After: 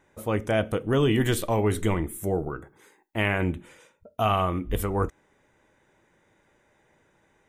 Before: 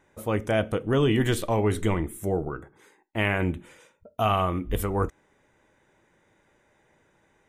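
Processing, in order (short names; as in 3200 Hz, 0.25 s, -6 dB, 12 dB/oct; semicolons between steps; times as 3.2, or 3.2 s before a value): 0.65–3.22 high shelf 12000 Hz +9 dB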